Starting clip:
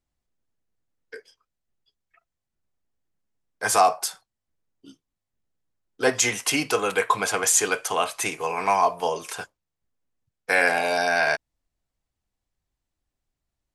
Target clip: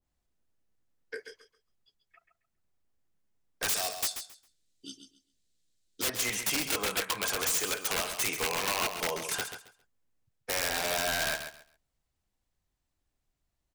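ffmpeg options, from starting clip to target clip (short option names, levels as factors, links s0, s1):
-filter_complex "[0:a]asplit=3[s0][s1][s2];[s0]afade=t=out:st=3.68:d=0.02[s3];[s1]equalizer=f=125:t=o:w=1:g=-3,equalizer=f=1000:t=o:w=1:g=-11,equalizer=f=4000:t=o:w=1:g=12,equalizer=f=8000:t=o:w=1:g=11,afade=t=in:st=3.68:d=0.02,afade=t=out:st=6.08:d=0.02[s4];[s2]afade=t=in:st=6.08:d=0.02[s5];[s3][s4][s5]amix=inputs=3:normalize=0,acompressor=threshold=0.0398:ratio=8,aeval=exprs='(mod(17.8*val(0)+1,2)-1)/17.8':c=same,aecho=1:1:135|270|405:0.355|0.0781|0.0172,adynamicequalizer=threshold=0.00794:dfrequency=1700:dqfactor=0.7:tfrequency=1700:tqfactor=0.7:attack=5:release=100:ratio=0.375:range=1.5:mode=boostabove:tftype=highshelf"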